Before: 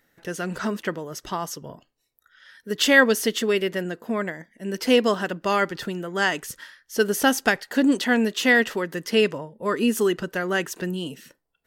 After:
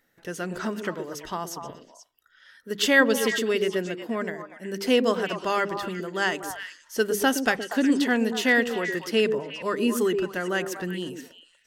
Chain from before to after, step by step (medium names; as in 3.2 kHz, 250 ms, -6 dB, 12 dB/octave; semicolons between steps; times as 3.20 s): hum notches 50/100/150/200 Hz; repeats whose band climbs or falls 120 ms, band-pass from 340 Hz, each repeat 1.4 oct, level -3 dB; trim -3 dB